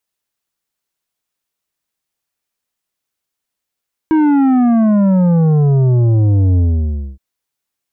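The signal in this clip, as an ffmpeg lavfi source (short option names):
-f lavfi -i "aevalsrc='0.335*clip((3.07-t)/0.6,0,1)*tanh(2.82*sin(2*PI*320*3.07/log(65/320)*(exp(log(65/320)*t/3.07)-1)))/tanh(2.82)':d=3.07:s=44100"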